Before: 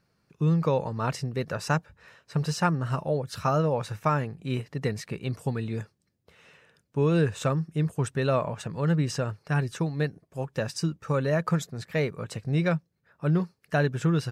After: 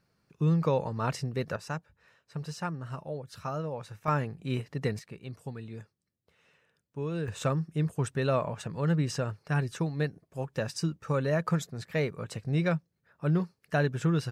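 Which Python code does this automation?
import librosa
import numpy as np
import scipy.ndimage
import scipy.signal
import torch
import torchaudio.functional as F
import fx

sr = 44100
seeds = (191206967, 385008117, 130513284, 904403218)

y = fx.gain(x, sr, db=fx.steps((0.0, -2.0), (1.56, -10.0), (4.08, -2.0), (4.99, -10.5), (7.28, -2.5)))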